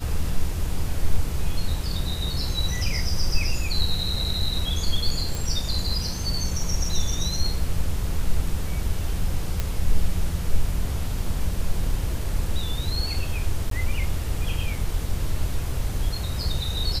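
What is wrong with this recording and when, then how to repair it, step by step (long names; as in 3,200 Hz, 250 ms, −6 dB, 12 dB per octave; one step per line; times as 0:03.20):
0:05.35: click
0:09.60: click −11 dBFS
0:13.70–0:13.71: drop-out 13 ms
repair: click removal
repair the gap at 0:13.70, 13 ms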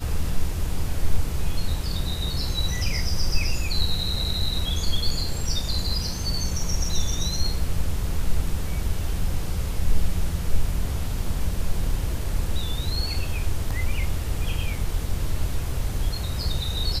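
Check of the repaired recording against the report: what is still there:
none of them is left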